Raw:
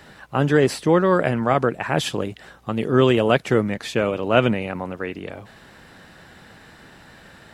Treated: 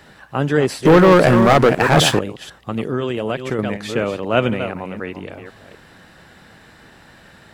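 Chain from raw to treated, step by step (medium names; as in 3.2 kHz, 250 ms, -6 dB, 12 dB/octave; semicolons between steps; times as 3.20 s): chunks repeated in reverse 250 ms, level -10 dB; 0.85–2.19 s: waveshaping leveller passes 3; 2.86–3.59 s: compression 6:1, threshold -18 dBFS, peak gain reduction 8 dB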